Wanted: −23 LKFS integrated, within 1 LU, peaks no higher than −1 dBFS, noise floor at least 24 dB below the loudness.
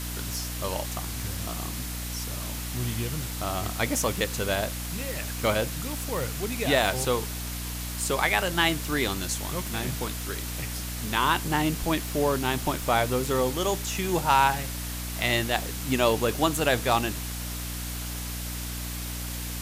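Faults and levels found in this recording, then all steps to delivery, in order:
mains hum 60 Hz; hum harmonics up to 300 Hz; level of the hum −33 dBFS; background noise floor −34 dBFS; target noise floor −52 dBFS; integrated loudness −27.5 LKFS; sample peak −7.5 dBFS; target loudness −23.0 LKFS
→ hum removal 60 Hz, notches 5
broadband denoise 18 dB, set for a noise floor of −34 dBFS
level +4.5 dB

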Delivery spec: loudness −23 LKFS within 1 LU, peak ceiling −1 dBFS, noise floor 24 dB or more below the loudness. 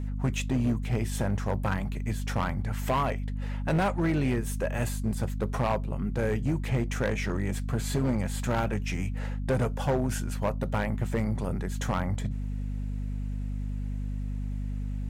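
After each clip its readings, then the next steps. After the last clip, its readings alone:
share of clipped samples 1.9%; peaks flattened at −21.0 dBFS; mains hum 50 Hz; hum harmonics up to 250 Hz; level of the hum −30 dBFS; integrated loudness −30.5 LKFS; sample peak −21.0 dBFS; target loudness −23.0 LKFS
→ clipped peaks rebuilt −21 dBFS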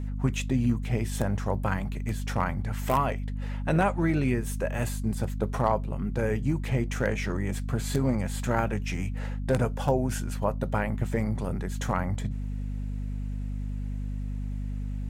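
share of clipped samples 0.0%; mains hum 50 Hz; hum harmonics up to 250 Hz; level of the hum −29 dBFS
→ mains-hum notches 50/100/150/200/250 Hz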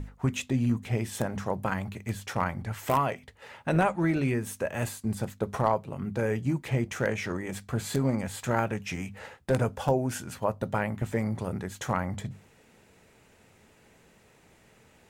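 mains hum none found; integrated loudness −30.0 LKFS; sample peak −11.0 dBFS; target loudness −23.0 LKFS
→ level +7 dB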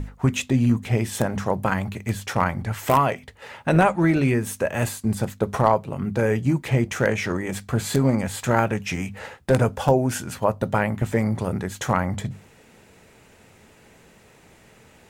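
integrated loudness −23.0 LKFS; sample peak −4.0 dBFS; background noise floor −53 dBFS

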